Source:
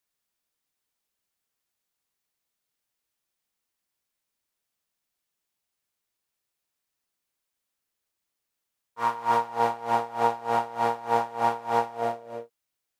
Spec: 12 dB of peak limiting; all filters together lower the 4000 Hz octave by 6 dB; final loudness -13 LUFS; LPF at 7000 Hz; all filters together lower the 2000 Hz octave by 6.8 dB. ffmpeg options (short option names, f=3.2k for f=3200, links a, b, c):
-af "lowpass=7k,equalizer=f=2k:t=o:g=-9,equalizer=f=4k:t=o:g=-4,volume=21.5dB,alimiter=limit=-1.5dB:level=0:latency=1"